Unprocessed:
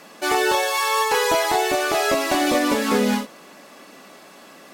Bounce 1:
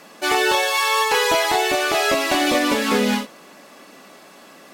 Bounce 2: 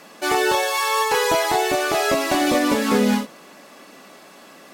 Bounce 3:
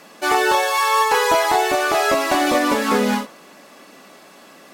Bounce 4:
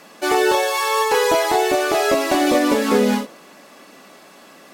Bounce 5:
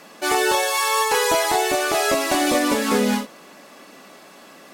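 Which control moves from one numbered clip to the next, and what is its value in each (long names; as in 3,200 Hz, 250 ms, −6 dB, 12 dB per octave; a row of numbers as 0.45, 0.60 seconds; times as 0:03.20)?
dynamic equaliser, frequency: 2,900, 130, 1,100, 410, 9,400 Hertz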